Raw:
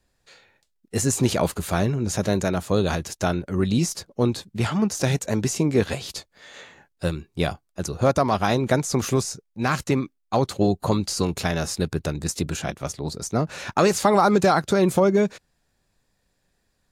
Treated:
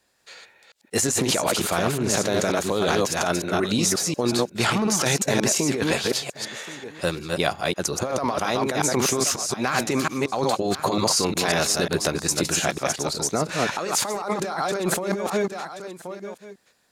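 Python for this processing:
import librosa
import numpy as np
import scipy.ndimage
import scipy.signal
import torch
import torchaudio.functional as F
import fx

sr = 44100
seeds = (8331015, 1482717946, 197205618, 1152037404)

y = fx.reverse_delay(x, sr, ms=180, wet_db=-4)
y = fx.highpass(y, sr, hz=510.0, slope=6)
y = y + 10.0 ** (-21.0 / 20.0) * np.pad(y, (int(1078 * sr / 1000.0), 0))[:len(y)]
y = fx.over_compress(y, sr, threshold_db=-27.0, ratio=-1.0)
y = fx.doppler_dist(y, sr, depth_ms=0.16, at=(1.01, 3.01))
y = y * 10.0 ** (4.5 / 20.0)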